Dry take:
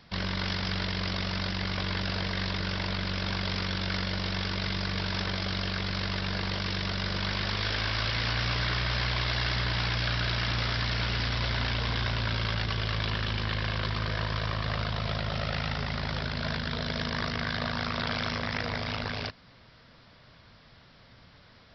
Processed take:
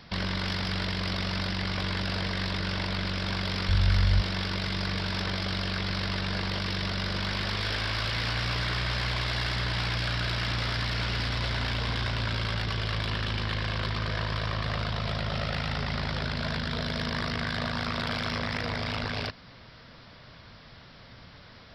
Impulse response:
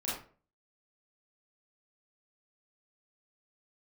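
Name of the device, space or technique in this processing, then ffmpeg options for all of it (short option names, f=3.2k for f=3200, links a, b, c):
soft clipper into limiter: -filter_complex "[0:a]asoftclip=type=tanh:threshold=-21.5dB,alimiter=level_in=4.5dB:limit=-24dB:level=0:latency=1,volume=-4.5dB,asplit=3[a][b][c];[a]afade=t=out:st=3.68:d=0.02[d];[b]asubboost=boost=10.5:cutoff=83,afade=t=in:st=3.68:d=0.02,afade=t=out:st=4.2:d=0.02[e];[c]afade=t=in:st=4.2:d=0.02[f];[d][e][f]amix=inputs=3:normalize=0,volume=5.5dB"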